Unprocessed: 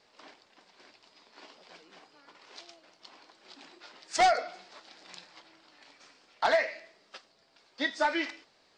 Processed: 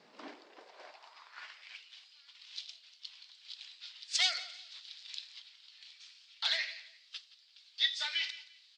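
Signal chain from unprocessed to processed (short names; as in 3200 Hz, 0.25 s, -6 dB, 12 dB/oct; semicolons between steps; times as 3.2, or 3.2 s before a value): high shelf 5700 Hz -9 dB; on a send: feedback echo 0.173 s, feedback 28%, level -18 dB; on the sum: high-pass sweep 180 Hz -> 3500 Hz, 0.05–1.96; gain +3 dB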